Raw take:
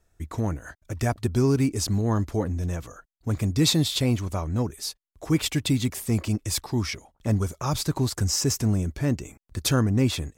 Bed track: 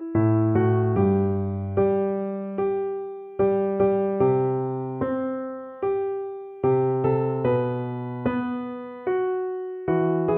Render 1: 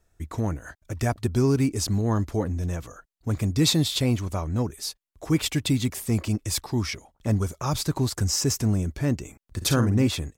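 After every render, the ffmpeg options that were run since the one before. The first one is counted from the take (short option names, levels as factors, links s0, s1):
-filter_complex "[0:a]asplit=3[s0][s1][s2];[s0]afade=t=out:st=9.6:d=0.02[s3];[s1]asplit=2[s4][s5];[s5]adelay=49,volume=0.376[s6];[s4][s6]amix=inputs=2:normalize=0,afade=t=in:st=9.6:d=0.02,afade=t=out:st=10.07:d=0.02[s7];[s2]afade=t=in:st=10.07:d=0.02[s8];[s3][s7][s8]amix=inputs=3:normalize=0"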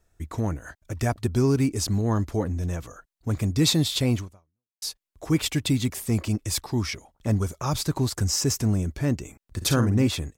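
-filter_complex "[0:a]asplit=2[s0][s1];[s0]atrim=end=4.82,asetpts=PTS-STARTPTS,afade=t=out:st=4.2:d=0.62:c=exp[s2];[s1]atrim=start=4.82,asetpts=PTS-STARTPTS,afade=t=in:d=0.004:c=hsin[s3];[s2][s3]concat=n=2:v=0:a=1"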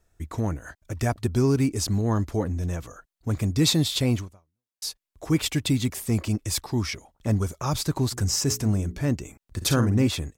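-filter_complex "[0:a]asplit=3[s0][s1][s2];[s0]afade=t=out:st=8.11:d=0.02[s3];[s1]bandreject=f=60:t=h:w=6,bandreject=f=120:t=h:w=6,bandreject=f=180:t=h:w=6,bandreject=f=240:t=h:w=6,bandreject=f=300:t=h:w=6,bandreject=f=360:t=h:w=6,bandreject=f=420:t=h:w=6,afade=t=in:st=8.11:d=0.02,afade=t=out:st=9.09:d=0.02[s4];[s2]afade=t=in:st=9.09:d=0.02[s5];[s3][s4][s5]amix=inputs=3:normalize=0"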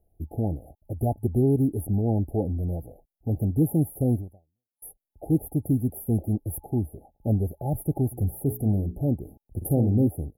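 -af "afftfilt=real='re*(1-between(b*sr/4096,860,10000))':imag='im*(1-between(b*sr/4096,860,10000))':win_size=4096:overlap=0.75"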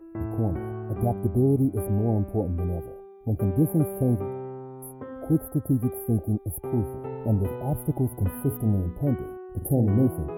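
-filter_complex "[1:a]volume=0.224[s0];[0:a][s0]amix=inputs=2:normalize=0"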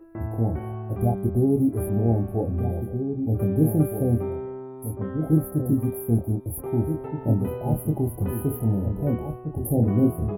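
-filter_complex "[0:a]asplit=2[s0][s1];[s1]adelay=26,volume=0.562[s2];[s0][s2]amix=inputs=2:normalize=0,asplit=2[s3][s4];[s4]adelay=1574,volume=0.447,highshelf=f=4000:g=-35.4[s5];[s3][s5]amix=inputs=2:normalize=0"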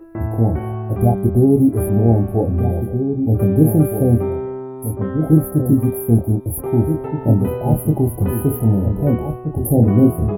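-af "volume=2.51,alimiter=limit=0.794:level=0:latency=1"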